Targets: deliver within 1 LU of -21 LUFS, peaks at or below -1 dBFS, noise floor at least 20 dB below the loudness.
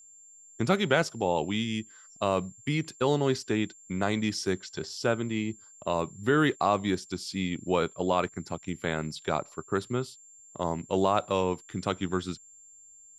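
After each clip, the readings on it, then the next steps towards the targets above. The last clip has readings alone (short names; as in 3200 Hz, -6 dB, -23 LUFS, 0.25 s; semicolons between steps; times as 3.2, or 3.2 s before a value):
steady tone 7300 Hz; tone level -51 dBFS; loudness -29.5 LUFS; peak -8.5 dBFS; loudness target -21.0 LUFS
-> notch 7300 Hz, Q 30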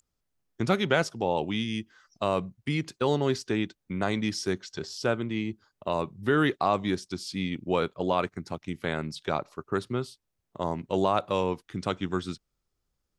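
steady tone none; loudness -29.5 LUFS; peak -8.5 dBFS; loudness target -21.0 LUFS
-> gain +8.5 dB; limiter -1 dBFS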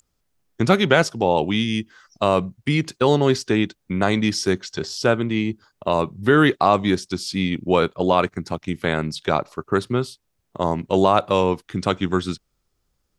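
loudness -21.0 LUFS; peak -1.0 dBFS; noise floor -73 dBFS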